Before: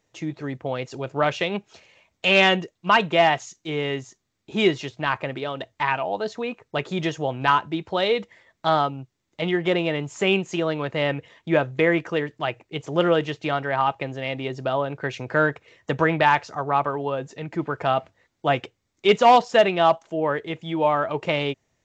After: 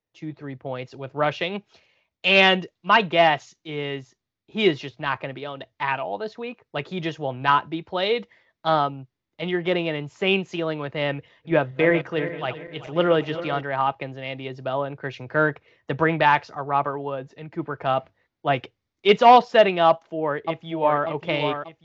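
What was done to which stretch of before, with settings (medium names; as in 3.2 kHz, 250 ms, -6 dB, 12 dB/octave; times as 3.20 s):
11.13–13.61 s: backward echo that repeats 193 ms, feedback 67%, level -10.5 dB
19.88–21.04 s: echo throw 590 ms, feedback 45%, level -6 dB
whole clip: low-pass 5.3 kHz 24 dB/octave; three bands expanded up and down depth 40%; trim -1 dB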